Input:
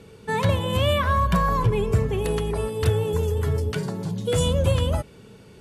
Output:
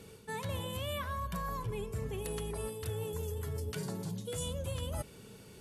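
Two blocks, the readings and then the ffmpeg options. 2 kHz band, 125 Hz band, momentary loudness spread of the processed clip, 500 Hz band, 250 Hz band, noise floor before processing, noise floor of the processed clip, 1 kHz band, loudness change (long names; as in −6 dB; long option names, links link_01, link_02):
−14.5 dB, −16.0 dB, 3 LU, −15.0 dB, −14.5 dB, −48 dBFS, −54 dBFS, −16.0 dB, −15.0 dB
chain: -af "aemphasis=mode=production:type=50kf,areverse,acompressor=threshold=-29dB:ratio=6,areverse,volume=-6dB"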